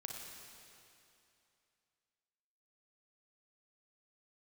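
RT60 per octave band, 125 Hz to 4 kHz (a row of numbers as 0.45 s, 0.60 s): 2.7 s, 2.6 s, 2.7 s, 2.8 s, 2.7 s, 2.6 s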